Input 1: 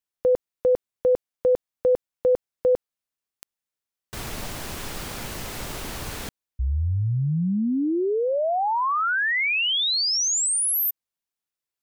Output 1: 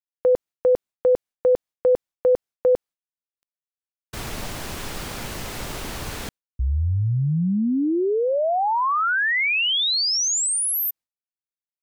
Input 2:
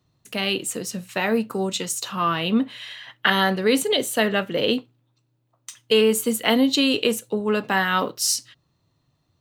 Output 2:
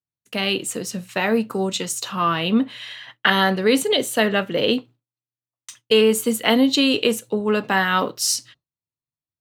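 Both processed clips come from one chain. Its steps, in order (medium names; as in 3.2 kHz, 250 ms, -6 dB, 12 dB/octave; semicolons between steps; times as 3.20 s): expander -39 dBFS, range -33 dB; treble shelf 9.1 kHz -3.5 dB; trim +2 dB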